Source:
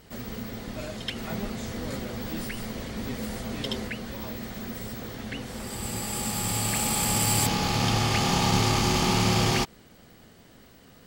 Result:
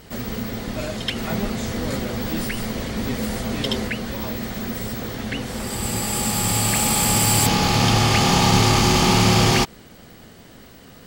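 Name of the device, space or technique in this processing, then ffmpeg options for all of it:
saturation between pre-emphasis and de-emphasis: -af "highshelf=f=2.3k:g=10.5,asoftclip=type=tanh:threshold=-11dB,highshelf=f=2.3k:g=-10.5,volume=8dB"

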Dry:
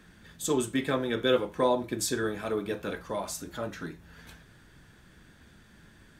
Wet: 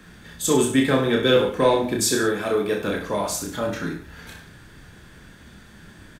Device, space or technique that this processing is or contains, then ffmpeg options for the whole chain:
one-band saturation: -filter_complex "[0:a]asettb=1/sr,asplit=3[a][b][c];[a]atrim=end=2.044[d];[b]atrim=start=2.04:end=2.81,asetpts=PTS-STARTPTS,afade=t=in:d=0.004:c=qsin,afade=t=out:st=0.766:d=0.004:c=qsin,highpass=f=160:p=1[e];[c]atrim=start=2.806[f];[d][e]acrossfade=d=0.004:c1=hsin:c2=qsin[g];[g][f]acrossfade=d=0.004:c1=qsin:c2=hsin,acrossover=split=490|2400[h][i][j];[i]asoftclip=type=tanh:threshold=-27dB[k];[h][k][j]amix=inputs=3:normalize=0,aecho=1:1:30|63|99.3|139.2|183.2:0.631|0.398|0.251|0.158|0.1,volume=7.5dB"

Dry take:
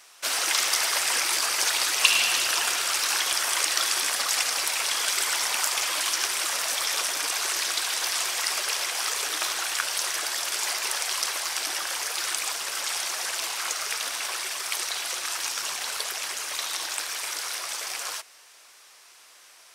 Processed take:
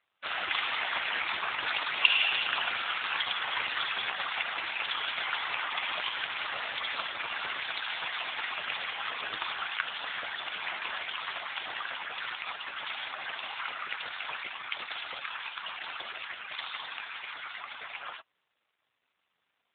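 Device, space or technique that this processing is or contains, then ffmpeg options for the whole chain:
mobile call with aggressive noise cancelling: -af "highpass=110,afftdn=nr=21:nf=-38" -ar 8000 -c:a libopencore_amrnb -b:a 7950

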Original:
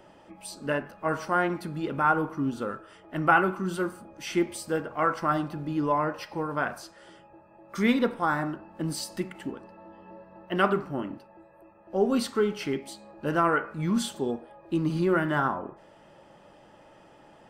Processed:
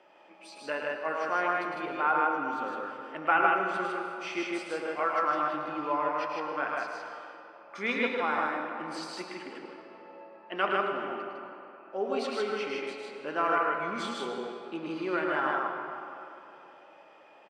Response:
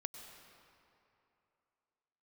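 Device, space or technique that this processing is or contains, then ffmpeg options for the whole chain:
station announcement: -filter_complex "[0:a]highpass=430,lowpass=4.6k,equalizer=f=2.4k:t=o:w=0.21:g=9,aecho=1:1:107.9|154.5:0.501|0.794[a];[1:a]atrim=start_sample=2205[b];[a][b]afir=irnorm=-1:irlink=0,volume=-1dB"

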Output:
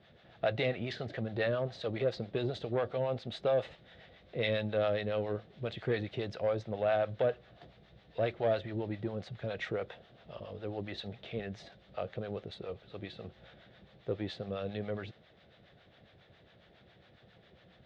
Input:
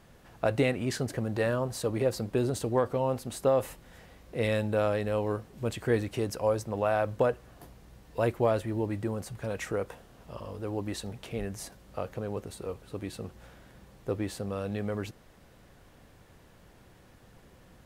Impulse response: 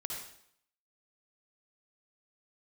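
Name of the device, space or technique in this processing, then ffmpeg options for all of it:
guitar amplifier with harmonic tremolo: -filter_complex "[0:a]acrossover=split=630[a][b];[a]aeval=exprs='val(0)*(1-0.7/2+0.7/2*cos(2*PI*7.3*n/s))':c=same[c];[b]aeval=exprs='val(0)*(1-0.7/2-0.7/2*cos(2*PI*7.3*n/s))':c=same[d];[c][d]amix=inputs=2:normalize=0,asoftclip=type=tanh:threshold=-21.5dB,highpass=92,equalizer=f=270:t=q:w=4:g=-7,equalizer=f=650:t=q:w=4:g=5,equalizer=f=1k:t=q:w=4:g=-9,equalizer=f=2k:t=q:w=4:g=3,equalizer=f=3.6k:t=q:w=4:g=10,lowpass=f=4.2k:w=0.5412,lowpass=f=4.2k:w=1.3066"

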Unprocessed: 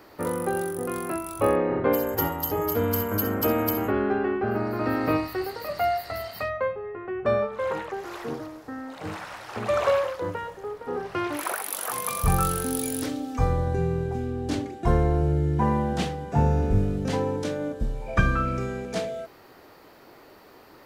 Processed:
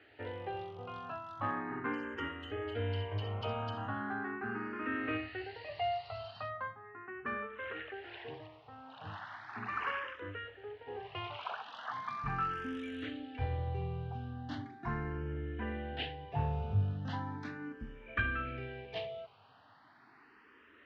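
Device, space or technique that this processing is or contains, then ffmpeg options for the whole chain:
barber-pole phaser into a guitar amplifier: -filter_complex "[0:a]asplit=2[a][b];[b]afreqshift=0.38[c];[a][c]amix=inputs=2:normalize=1,asoftclip=type=tanh:threshold=-14.5dB,highpass=85,equalizer=f=100:t=q:w=4:g=6,equalizer=f=180:t=q:w=4:g=-10,equalizer=f=350:t=q:w=4:g=-7,equalizer=f=540:t=q:w=4:g=-9,equalizer=f=1.7k:t=q:w=4:g=6,equalizer=f=2.9k:t=q:w=4:g=8,lowpass=f=3.8k:w=0.5412,lowpass=f=3.8k:w=1.3066,asettb=1/sr,asplit=3[d][e][f];[d]atrim=end=11.314[g];[e]atrim=start=11.31:end=12.53,asetpts=PTS-STARTPTS,afade=t=in:d=0.004:c=qsin,afade=t=out:st=1.216:d=0.004:c=qsin,lowpass=5.4k[h];[f]atrim=start=12.526[i];[g][h]acrossfade=d=0.004:c1=hsin:c2=qsin[j];[j][i]acrossfade=d=0.004:c1=qsin:c2=hsin,volume=-7dB"

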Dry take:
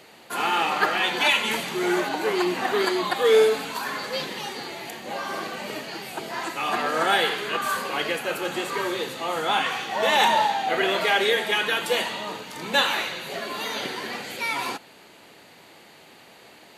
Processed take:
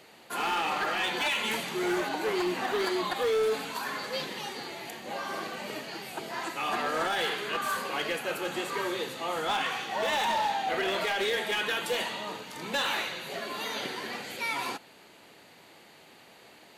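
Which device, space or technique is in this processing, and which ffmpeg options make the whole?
limiter into clipper: -af "alimiter=limit=-13.5dB:level=0:latency=1:release=44,asoftclip=type=hard:threshold=-19dB,volume=-4.5dB"

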